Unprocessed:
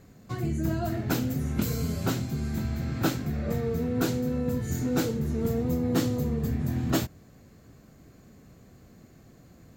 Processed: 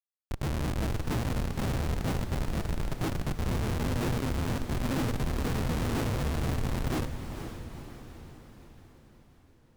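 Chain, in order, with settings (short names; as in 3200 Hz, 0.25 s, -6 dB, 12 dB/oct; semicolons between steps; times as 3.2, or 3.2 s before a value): 3.42–3.88 low shelf 110 Hz +4.5 dB; Schmitt trigger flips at -25 dBFS; diffused feedback echo 0.48 s, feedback 54%, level -8.5 dB; Schroeder reverb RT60 2.5 s, combs from 30 ms, DRR 18.5 dB; shaped vibrato saw down 5.7 Hz, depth 160 cents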